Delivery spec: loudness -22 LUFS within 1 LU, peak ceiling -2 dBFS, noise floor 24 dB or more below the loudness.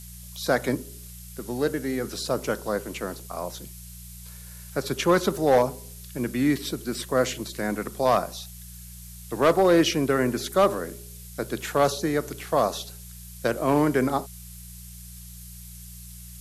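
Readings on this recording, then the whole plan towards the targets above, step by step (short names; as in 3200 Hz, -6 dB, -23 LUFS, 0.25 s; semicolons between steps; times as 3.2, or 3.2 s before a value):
hum 60 Hz; harmonics up to 180 Hz; hum level -41 dBFS; noise floor -43 dBFS; noise floor target -50 dBFS; loudness -25.5 LUFS; peak -10.5 dBFS; loudness target -22.0 LUFS
-> de-hum 60 Hz, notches 3; noise print and reduce 7 dB; gain +3.5 dB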